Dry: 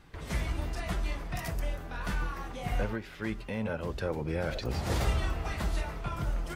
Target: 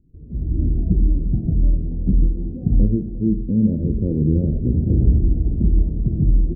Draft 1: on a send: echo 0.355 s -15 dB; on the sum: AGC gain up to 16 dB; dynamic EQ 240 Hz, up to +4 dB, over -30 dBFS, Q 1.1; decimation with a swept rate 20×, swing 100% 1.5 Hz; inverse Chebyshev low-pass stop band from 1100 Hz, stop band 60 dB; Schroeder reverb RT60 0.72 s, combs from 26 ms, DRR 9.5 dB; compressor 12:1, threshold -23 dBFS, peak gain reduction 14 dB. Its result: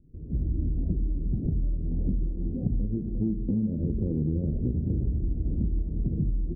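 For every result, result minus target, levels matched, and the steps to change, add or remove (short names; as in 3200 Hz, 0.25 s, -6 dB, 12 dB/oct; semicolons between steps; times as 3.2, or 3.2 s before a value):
compressor: peak gain reduction +14 dB; decimation with a swept rate: distortion +10 dB
remove: compressor 12:1, threshold -23 dBFS, peak gain reduction 14 dB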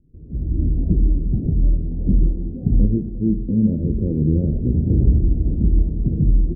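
decimation with a swept rate: distortion +10 dB
change: decimation with a swept rate 4×, swing 100% 1.5 Hz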